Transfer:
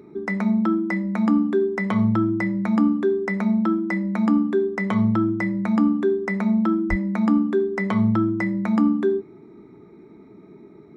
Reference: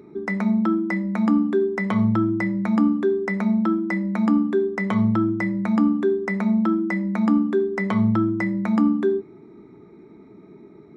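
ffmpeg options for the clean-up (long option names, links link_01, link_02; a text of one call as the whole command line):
ffmpeg -i in.wav -filter_complex "[0:a]asplit=3[link_01][link_02][link_03];[link_01]afade=type=out:start_time=6.89:duration=0.02[link_04];[link_02]highpass=frequency=140:width=0.5412,highpass=frequency=140:width=1.3066,afade=type=in:start_time=6.89:duration=0.02,afade=type=out:start_time=7.01:duration=0.02[link_05];[link_03]afade=type=in:start_time=7.01:duration=0.02[link_06];[link_04][link_05][link_06]amix=inputs=3:normalize=0" out.wav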